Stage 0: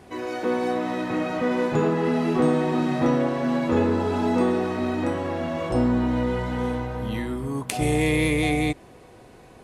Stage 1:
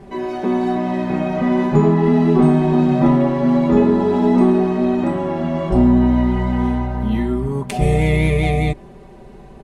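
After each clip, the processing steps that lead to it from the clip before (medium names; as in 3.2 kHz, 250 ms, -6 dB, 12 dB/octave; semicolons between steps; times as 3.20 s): tilt EQ -2.5 dB/octave; comb 5.1 ms, depth 100%; trim +1 dB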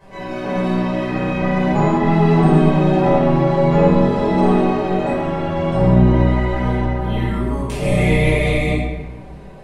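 spectral peaks clipped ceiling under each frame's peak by 14 dB; reverberation RT60 1.2 s, pre-delay 9 ms, DRR -8 dB; trim -13.5 dB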